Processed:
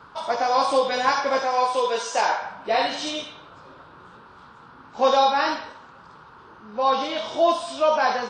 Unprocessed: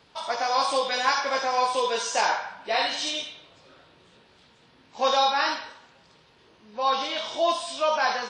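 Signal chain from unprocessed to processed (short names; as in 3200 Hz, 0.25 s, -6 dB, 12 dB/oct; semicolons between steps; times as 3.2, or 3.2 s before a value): tilt shelf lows +5.5 dB; band noise 840–1500 Hz -52 dBFS; 1.43–2.42 low shelf 310 Hz -10.5 dB; gain +3 dB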